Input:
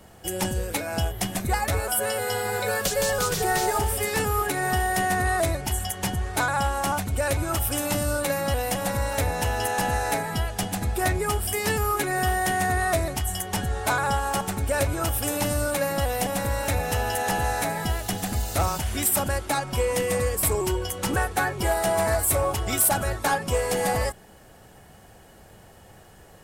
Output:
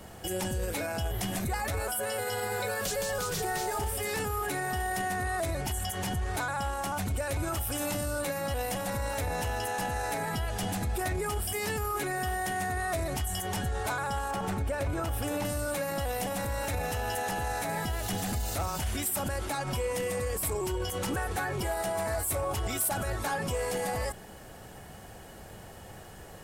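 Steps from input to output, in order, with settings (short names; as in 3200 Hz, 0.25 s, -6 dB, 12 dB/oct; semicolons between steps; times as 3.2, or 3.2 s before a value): 14.31–15.45 high shelf 4000 Hz -10.5 dB; limiter -27 dBFS, peak gain reduction 12 dB; gain +3 dB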